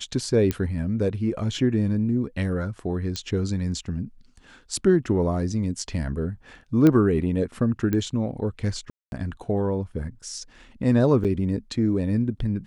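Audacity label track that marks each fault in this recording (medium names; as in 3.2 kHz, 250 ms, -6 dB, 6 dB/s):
0.510000	0.510000	pop -11 dBFS
3.160000	3.160000	pop -15 dBFS
6.870000	6.870000	pop -9 dBFS
7.930000	7.930000	pop -13 dBFS
8.900000	9.120000	dropout 221 ms
11.240000	11.250000	dropout 7.4 ms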